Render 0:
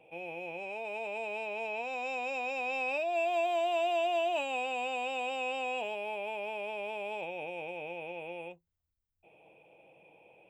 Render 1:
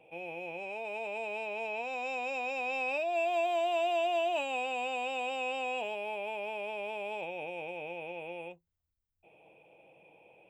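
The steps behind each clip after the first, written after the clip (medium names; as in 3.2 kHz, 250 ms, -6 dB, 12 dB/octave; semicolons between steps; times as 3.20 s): no audible change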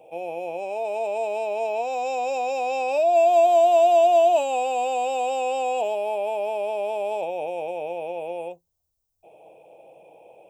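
FFT filter 230 Hz 0 dB, 670 Hz +11 dB, 1.9 kHz -9 dB, 6 kHz +10 dB; trim +3.5 dB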